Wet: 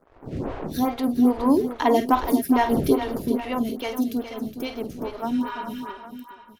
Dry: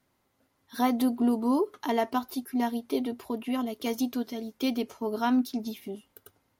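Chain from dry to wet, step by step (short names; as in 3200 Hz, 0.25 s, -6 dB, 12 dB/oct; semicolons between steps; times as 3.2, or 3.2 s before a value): wind noise 360 Hz -40 dBFS; Doppler pass-by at 2.4, 7 m/s, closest 4.6 m; sample leveller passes 1; in parallel at -2 dB: compressor, threshold -44 dBFS, peak gain reduction 20.5 dB; on the sum: crossover distortion -57 dBFS; spectral repair 5.36–5.89, 760–11000 Hz before; tapped delay 49/416/806 ms -10/-10.5/-15 dB; photocell phaser 2.4 Hz; gain +8.5 dB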